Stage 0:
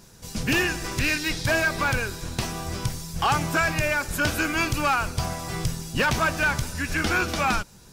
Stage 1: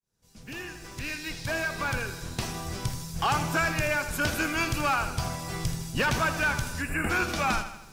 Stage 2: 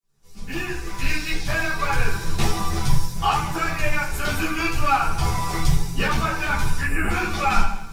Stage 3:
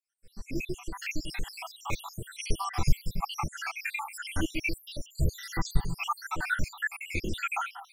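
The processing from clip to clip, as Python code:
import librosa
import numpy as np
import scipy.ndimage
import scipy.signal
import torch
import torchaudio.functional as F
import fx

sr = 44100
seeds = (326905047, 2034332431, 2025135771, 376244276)

y1 = fx.fade_in_head(x, sr, length_s=2.52)
y1 = fx.spec_box(y1, sr, start_s=6.82, length_s=0.28, low_hz=2900.0, high_hz=7000.0, gain_db=-25)
y1 = fx.echo_crushed(y1, sr, ms=80, feedback_pct=55, bits=9, wet_db=-11)
y1 = F.gain(torch.from_numpy(y1), -3.5).numpy()
y2 = fx.rider(y1, sr, range_db=4, speed_s=0.5)
y2 = fx.room_shoebox(y2, sr, seeds[0], volume_m3=130.0, walls='furnished', distance_m=3.3)
y2 = fx.ensemble(y2, sr)
y3 = fx.spec_dropout(y2, sr, seeds[1], share_pct=79)
y3 = F.gain(torch.from_numpy(y3), -2.5).numpy()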